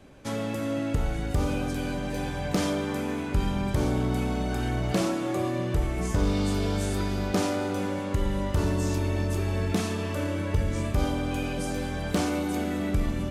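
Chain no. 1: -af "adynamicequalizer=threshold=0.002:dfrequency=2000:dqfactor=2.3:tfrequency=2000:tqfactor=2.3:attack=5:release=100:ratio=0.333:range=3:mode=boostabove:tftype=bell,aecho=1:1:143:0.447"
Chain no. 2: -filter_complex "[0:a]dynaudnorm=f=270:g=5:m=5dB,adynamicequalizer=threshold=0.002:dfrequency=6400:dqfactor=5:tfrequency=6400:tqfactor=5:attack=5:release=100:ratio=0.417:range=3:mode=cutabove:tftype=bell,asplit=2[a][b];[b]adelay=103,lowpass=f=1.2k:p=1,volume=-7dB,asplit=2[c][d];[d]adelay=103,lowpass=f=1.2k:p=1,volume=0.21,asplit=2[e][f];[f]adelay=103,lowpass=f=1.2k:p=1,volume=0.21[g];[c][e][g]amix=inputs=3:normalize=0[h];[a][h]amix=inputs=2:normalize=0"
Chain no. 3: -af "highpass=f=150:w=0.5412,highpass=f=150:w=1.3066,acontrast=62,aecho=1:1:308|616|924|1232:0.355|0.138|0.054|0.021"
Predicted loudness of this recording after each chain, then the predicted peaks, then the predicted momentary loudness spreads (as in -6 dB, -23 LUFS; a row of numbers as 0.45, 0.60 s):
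-27.0, -23.5, -23.5 LUFS; -13.0, -8.5, -6.5 dBFS; 4, 5, 4 LU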